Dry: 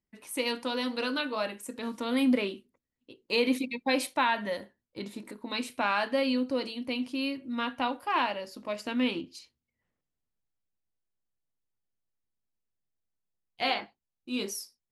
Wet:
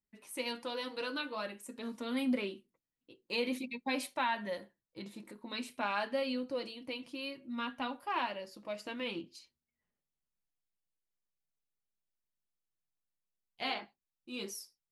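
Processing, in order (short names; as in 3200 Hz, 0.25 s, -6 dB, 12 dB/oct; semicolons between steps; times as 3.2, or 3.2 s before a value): flange 0.51 Hz, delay 4.7 ms, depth 1.6 ms, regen -38%; gain -3 dB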